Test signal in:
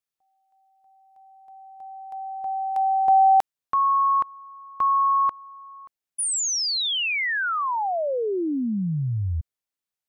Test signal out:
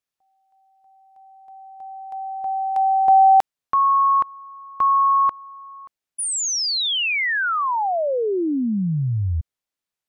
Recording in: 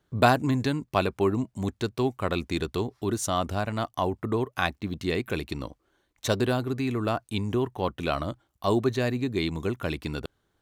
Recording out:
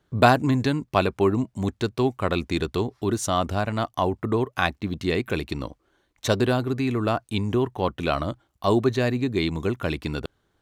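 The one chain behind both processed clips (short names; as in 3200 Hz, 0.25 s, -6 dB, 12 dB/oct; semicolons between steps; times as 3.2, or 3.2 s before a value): high shelf 8900 Hz -6 dB; gain +3.5 dB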